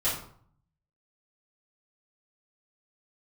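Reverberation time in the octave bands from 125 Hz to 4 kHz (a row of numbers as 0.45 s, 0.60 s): 1.0 s, 0.70 s, 0.55 s, 0.60 s, 0.45 s, 0.40 s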